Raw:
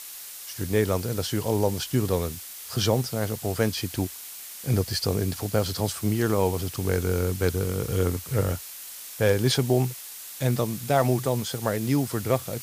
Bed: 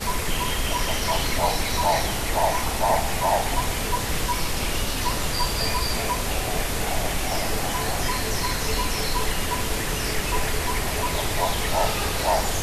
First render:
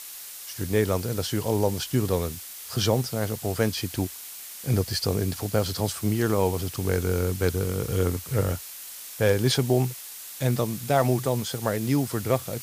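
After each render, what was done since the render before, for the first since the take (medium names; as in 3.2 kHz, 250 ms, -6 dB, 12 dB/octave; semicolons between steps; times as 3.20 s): no audible change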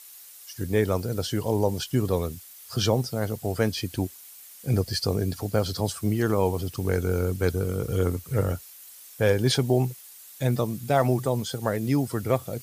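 noise reduction 10 dB, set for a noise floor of -40 dBFS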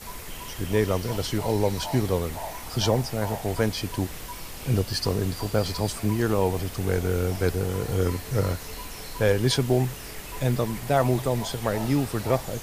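add bed -13.5 dB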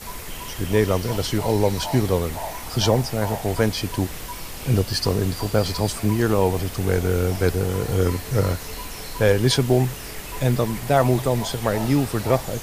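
trim +4 dB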